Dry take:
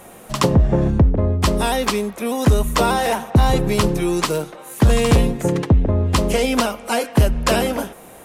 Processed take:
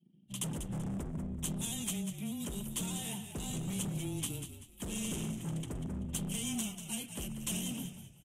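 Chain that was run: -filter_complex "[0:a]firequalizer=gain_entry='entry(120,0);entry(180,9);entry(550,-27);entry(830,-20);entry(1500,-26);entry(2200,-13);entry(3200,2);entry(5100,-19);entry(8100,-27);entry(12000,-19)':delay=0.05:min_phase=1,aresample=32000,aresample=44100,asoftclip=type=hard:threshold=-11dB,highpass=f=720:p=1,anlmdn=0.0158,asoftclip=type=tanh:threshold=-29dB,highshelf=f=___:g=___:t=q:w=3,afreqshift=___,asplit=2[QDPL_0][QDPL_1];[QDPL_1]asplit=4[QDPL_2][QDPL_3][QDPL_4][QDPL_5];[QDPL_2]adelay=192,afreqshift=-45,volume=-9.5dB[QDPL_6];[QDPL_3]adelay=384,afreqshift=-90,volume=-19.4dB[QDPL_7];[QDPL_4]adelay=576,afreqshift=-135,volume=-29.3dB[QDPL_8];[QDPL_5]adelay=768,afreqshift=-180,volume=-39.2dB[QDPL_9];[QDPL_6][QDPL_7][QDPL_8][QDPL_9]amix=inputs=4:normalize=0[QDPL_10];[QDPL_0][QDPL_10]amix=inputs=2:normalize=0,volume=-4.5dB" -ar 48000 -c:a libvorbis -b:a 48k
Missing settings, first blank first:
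6k, 12.5, -15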